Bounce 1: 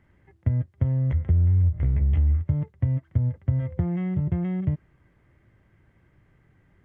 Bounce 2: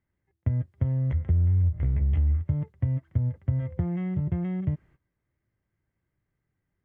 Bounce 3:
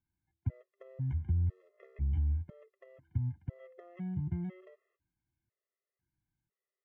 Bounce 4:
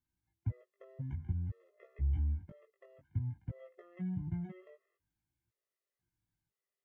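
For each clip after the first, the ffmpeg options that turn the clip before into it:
-af "agate=range=0.141:threshold=0.00316:ratio=16:detection=peak,volume=0.75"
-af "afftfilt=real='re*gt(sin(2*PI*1*pts/sr)*(1-2*mod(floor(b*sr/1024/350),2)),0)':imag='im*gt(sin(2*PI*1*pts/sr)*(1-2*mod(floor(b*sr/1024/350),2)),0)':win_size=1024:overlap=0.75,volume=0.422"
-af "flanger=delay=16.5:depth=3.4:speed=0.52,volume=1.19"

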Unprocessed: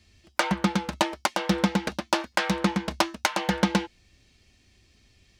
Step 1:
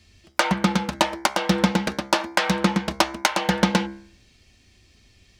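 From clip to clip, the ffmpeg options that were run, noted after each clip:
-af "bandreject=f=67.06:t=h:w=4,bandreject=f=134.12:t=h:w=4,bandreject=f=201.18:t=h:w=4,bandreject=f=268.24:t=h:w=4,bandreject=f=335.3:t=h:w=4,bandreject=f=402.36:t=h:w=4,bandreject=f=469.42:t=h:w=4,bandreject=f=536.48:t=h:w=4,bandreject=f=603.54:t=h:w=4,bandreject=f=670.6:t=h:w=4,bandreject=f=737.66:t=h:w=4,bandreject=f=804.72:t=h:w=4,bandreject=f=871.78:t=h:w=4,bandreject=f=938.84:t=h:w=4,bandreject=f=1005.9:t=h:w=4,bandreject=f=1072.96:t=h:w=4,bandreject=f=1140.02:t=h:w=4,bandreject=f=1207.08:t=h:w=4,bandreject=f=1274.14:t=h:w=4,bandreject=f=1341.2:t=h:w=4,bandreject=f=1408.26:t=h:w=4,bandreject=f=1475.32:t=h:w=4,bandreject=f=1542.38:t=h:w=4,bandreject=f=1609.44:t=h:w=4,bandreject=f=1676.5:t=h:w=4,bandreject=f=1743.56:t=h:w=4,bandreject=f=1810.62:t=h:w=4,bandreject=f=1877.68:t=h:w=4,bandreject=f=1944.74:t=h:w=4,bandreject=f=2011.8:t=h:w=4,bandreject=f=2078.86:t=h:w=4,bandreject=f=2145.92:t=h:w=4,bandreject=f=2212.98:t=h:w=4,bandreject=f=2280.04:t=h:w=4,bandreject=f=2347.1:t=h:w=4,volume=1.68"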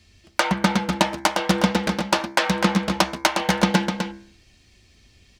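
-af "aecho=1:1:253:0.501"

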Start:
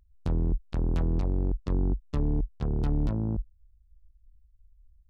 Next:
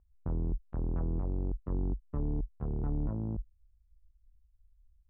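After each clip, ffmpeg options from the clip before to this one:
-af "lowpass=f=1400:w=0.5412,lowpass=f=1400:w=1.3066,volume=0.501"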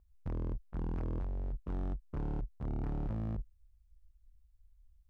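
-af "asoftclip=type=hard:threshold=0.0188,volume=1.12"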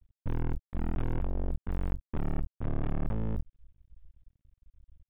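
-af "aeval=exprs='max(val(0),0)':c=same,aresample=8000,aresample=44100,volume=2.82"

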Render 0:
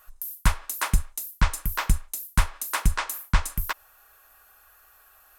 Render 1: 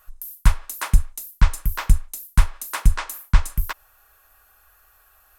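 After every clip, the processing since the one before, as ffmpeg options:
-af "lowshelf=f=110:g=9,volume=0.891"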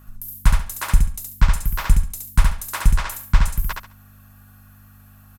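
-af "aeval=exprs='val(0)+0.00501*(sin(2*PI*50*n/s)+sin(2*PI*2*50*n/s)/2+sin(2*PI*3*50*n/s)/3+sin(2*PI*4*50*n/s)/4+sin(2*PI*5*50*n/s)/5)':c=same,aecho=1:1:69|138|207:0.668|0.16|0.0385"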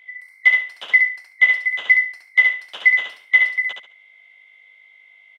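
-af "afftfilt=real='real(if(lt(b,920),b+92*(1-2*mod(floor(b/92),2)),b),0)':imag='imag(if(lt(b,920),b+92*(1-2*mod(floor(b/92),2)),b),0)':win_size=2048:overlap=0.75,highpass=660,lowpass=2400"

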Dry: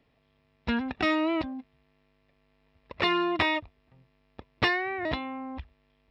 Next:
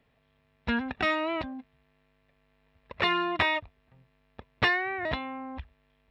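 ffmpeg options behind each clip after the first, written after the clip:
-af "equalizer=f=315:t=o:w=0.33:g=-8,equalizer=f=1600:t=o:w=0.33:g=4,equalizer=f=5000:t=o:w=0.33:g=-6"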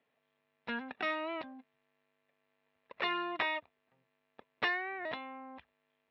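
-af "highpass=290,lowpass=4500,volume=0.422"

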